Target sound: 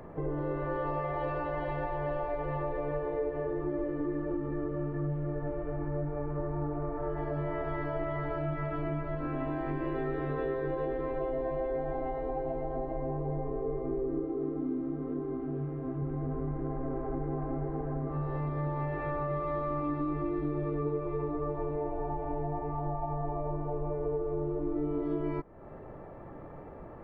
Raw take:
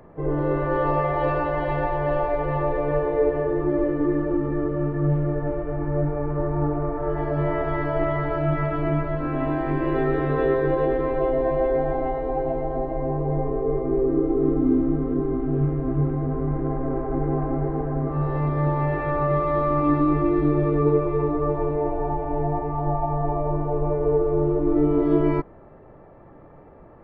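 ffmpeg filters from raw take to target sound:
-filter_complex "[0:a]acompressor=threshold=-36dB:ratio=3,asettb=1/sr,asplit=3[a][b][c];[a]atrim=end=14.244[d];[b]atrim=start=14.24:end=16.02,asetpts=PTS-STARTPTS,afade=t=in:d=0.004:c=qsin,afade=t=out:st=1.776:d=0.004:c=qsin,highpass=f=130:p=1[e];[c]atrim=start=16.016[f];[d][e]acrossfade=d=0.004:c1=hsin:c2=qsin[g];[g][f]acrossfade=d=0.004:c1=qsin:c2=hsin,volume=1.5dB"

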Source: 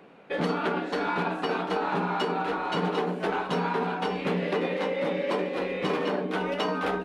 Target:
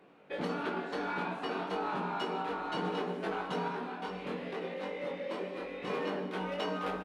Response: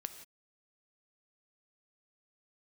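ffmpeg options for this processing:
-filter_complex "[0:a]asettb=1/sr,asplit=3[a][b][c];[a]atrim=end=3.684[d];[b]atrim=start=3.68:end=5.88,asetpts=PTS-STARTPTS,afade=t=in:d=0.004:c=qsin,afade=t=out:st=2.196:d=0.004:c=qsin,flanger=delay=22.5:depth=2.5:speed=2.2[e];[c]atrim=start=5.876[f];[d][e]acrossfade=d=0.004:c1=hsin:c2=qsin[g];[g][f]acrossfade=d=0.004:c1=qsin:c2=hsin,asplit=2[h][i];[i]adelay=21,volume=-5dB[j];[h][j]amix=inputs=2:normalize=0[k];[1:a]atrim=start_sample=2205,asetrate=40572,aresample=44100[l];[k][l]afir=irnorm=-1:irlink=0,volume=-6.5dB"

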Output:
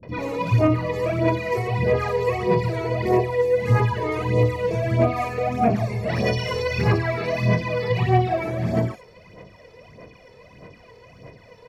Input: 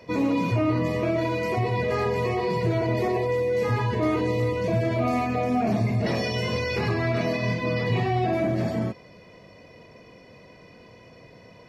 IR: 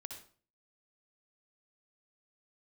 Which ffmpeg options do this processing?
-filter_complex "[0:a]aphaser=in_gain=1:out_gain=1:delay=2.3:decay=0.63:speed=1.6:type=sinusoidal,acrossover=split=260|4400[a][b][c];[b]adelay=30[d];[c]adelay=90[e];[a][d][e]amix=inputs=3:normalize=0"

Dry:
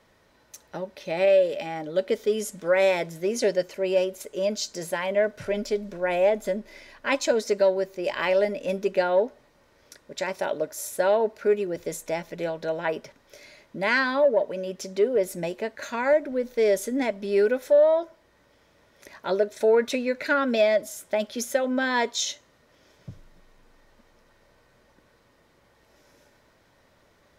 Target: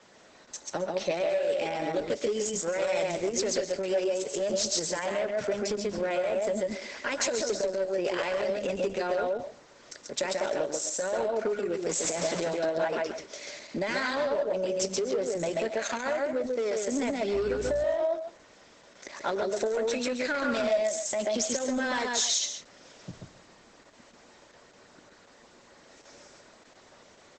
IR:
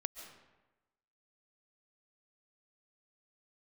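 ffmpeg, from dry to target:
-filter_complex "[0:a]asettb=1/sr,asplit=3[a][b][c];[a]atrim=end=11.894[d];[b]atrim=start=11.89:end=12.41,asetpts=PTS-STARTPTS,afade=t=in:d=0.004:c=qsin,afade=t=out:st=0.516:d=0.004:c=qsin,aeval=exprs='val(0)+0.5*0.0316*sgn(val(0))':c=same[e];[c]atrim=start=12.406[f];[d][e]acrossfade=d=0.004:c1=hsin:c2=qsin[g];[g][f]acrossfade=d=0.004:c1=qsin:c2=hsin,acrossover=split=160|5500[h][i][j];[h]aemphasis=mode=production:type=riaa[k];[i]alimiter=limit=-19.5dB:level=0:latency=1:release=208[l];[j]acontrast=62[m];[k][l][m]amix=inputs=3:normalize=0,aecho=1:1:137:0.631,asplit=2[n][o];[o]aeval=exprs='0.0596*(abs(mod(val(0)/0.0596+3,4)-2)-1)':c=same,volume=-5.5dB[p];[n][p]amix=inputs=2:normalize=0,asettb=1/sr,asplit=3[q][r][s];[q]atrim=end=17.344[t];[r]atrim=start=17.34:end=17.84,asetpts=PTS-STARTPTS,afade=t=in:d=0.004:c=qsin,afade=t=out:st=0.496:d=0.004:c=qsin,aeval=exprs='val(0)+0.0158*(sin(2*PI*60*n/s)+sin(2*PI*2*60*n/s)/2+sin(2*PI*3*60*n/s)/3+sin(2*PI*4*60*n/s)/4+sin(2*PI*5*60*n/s)/5)':c=same[u];[s]atrim=start=17.836[v];[t][u]acrossfade=d=0.004:c1=hsin:c2=qsin[w];[w][v]acrossfade=d=0.004:c1=qsin:c2=hsin,acompressor=threshold=-27dB:ratio=10,asplit=3[x][y][z];[x]afade=t=out:st=15.75:d=0.02[aa];[y]lowshelf=f=130:g=-9.5,afade=t=in:st=15.75:d=0.02,afade=t=out:st=16.8:d=0.02[ab];[z]afade=t=in:st=16.8:d=0.02[ac];[aa][ab][ac]amix=inputs=3:normalize=0[ad];[1:a]atrim=start_sample=2205,afade=t=out:st=0.22:d=0.01,atrim=end_sample=10143,asetrate=48510,aresample=44100[ae];[ad][ae]afir=irnorm=-1:irlink=0,volume=4.5dB" -ar 48000 -c:a libopus -b:a 10k

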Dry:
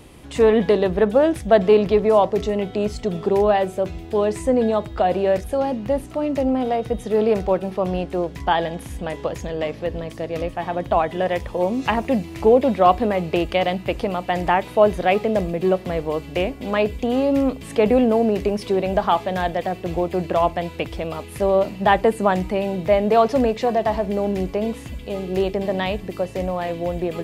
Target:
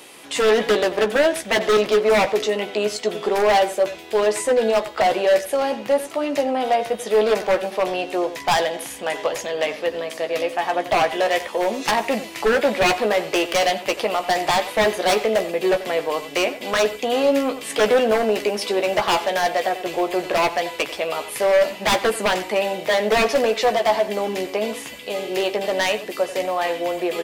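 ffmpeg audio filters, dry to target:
-filter_complex "[0:a]highpass=380,tiltshelf=f=1.2k:g=-4,asplit=2[a][b];[b]acontrast=76,volume=1dB[c];[a][c]amix=inputs=2:normalize=0,aeval=exprs='0.447*(abs(mod(val(0)/0.447+3,4)-2)-1)':c=same,asplit=2[d][e];[e]adelay=14,volume=-7.5dB[f];[d][f]amix=inputs=2:normalize=0,asplit=2[g][h];[h]adelay=90,highpass=300,lowpass=3.4k,asoftclip=type=hard:threshold=-13dB,volume=-11dB[i];[g][i]amix=inputs=2:normalize=0,volume=-5.5dB"

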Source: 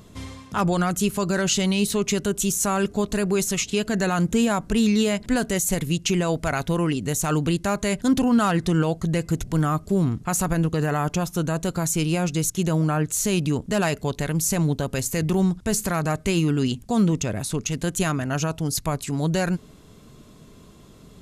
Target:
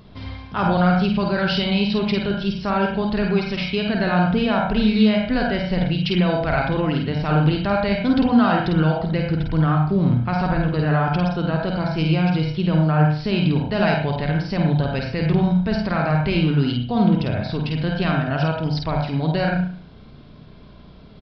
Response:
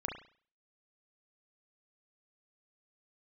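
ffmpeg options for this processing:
-filter_complex "[0:a]asplit=2[a][b];[b]aecho=1:1:1.3:0.73[c];[1:a]atrim=start_sample=2205,adelay=50[d];[c][d]afir=irnorm=-1:irlink=0,volume=-2.5dB[e];[a][e]amix=inputs=2:normalize=0,aresample=11025,aresample=44100"

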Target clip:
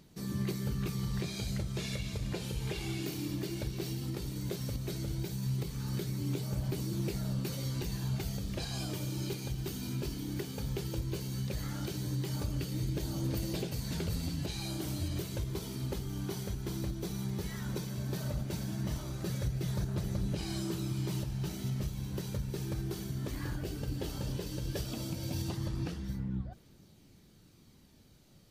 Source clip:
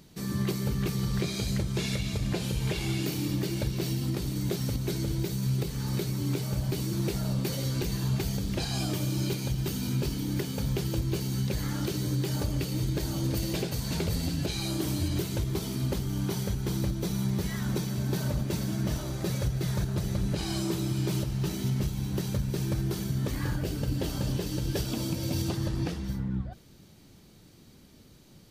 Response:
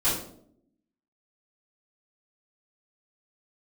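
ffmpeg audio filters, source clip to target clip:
-af "aphaser=in_gain=1:out_gain=1:delay=3:decay=0.21:speed=0.15:type=triangular,volume=-6.5dB"

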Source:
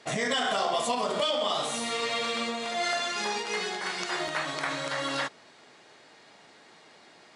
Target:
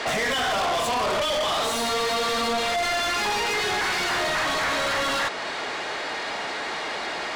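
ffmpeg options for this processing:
-filter_complex "[0:a]asettb=1/sr,asplit=3[a][b][c];[a]atrim=end=1.614[d];[b]atrim=start=1.61:end=2.59,asetpts=PTS-STARTPTS,afade=t=in:d=0.004:c=qsin,afade=t=out:st=0.976:d=0.004:c=qsin,aecho=1:1:4.5:0.89,atrim=end_sample=43218[e];[c]atrim=start=2.586[f];[d][e]acrossfade=d=0.004:c1=hsin:c2=qsin[g];[g][f]acrossfade=d=0.004:c1=qsin:c2=hsin,asplit=2[h][i];[i]acompressor=threshold=-39dB:ratio=6,volume=-3dB[j];[h][j]amix=inputs=2:normalize=0,asplit=2[k][l];[l]highpass=f=720:p=1,volume=32dB,asoftclip=type=tanh:threshold=-13dB[m];[k][m]amix=inputs=2:normalize=0,lowpass=f=2.4k:p=1,volume=-6dB,asoftclip=type=tanh:threshold=-21.5dB"

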